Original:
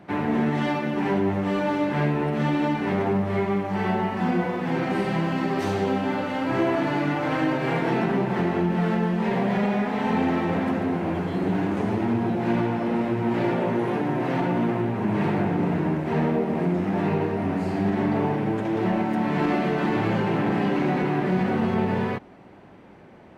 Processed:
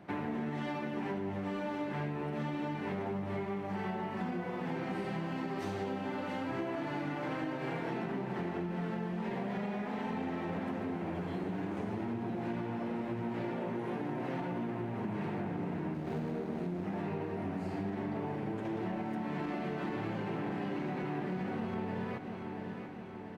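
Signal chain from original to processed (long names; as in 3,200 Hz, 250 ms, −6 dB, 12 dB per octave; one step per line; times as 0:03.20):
0:15.94–0:16.84: running median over 41 samples
repeating echo 686 ms, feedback 58%, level −14 dB
downward compressor 5 to 1, threshold −28 dBFS, peak gain reduction 9.5 dB
level −6 dB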